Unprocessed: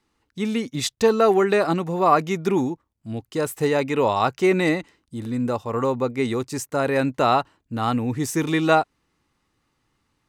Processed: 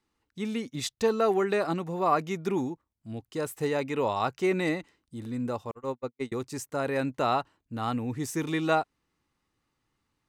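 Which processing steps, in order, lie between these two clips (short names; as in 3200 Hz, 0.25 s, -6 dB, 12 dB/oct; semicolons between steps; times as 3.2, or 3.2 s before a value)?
5.71–6.32 gate -20 dBFS, range -58 dB; gain -7.5 dB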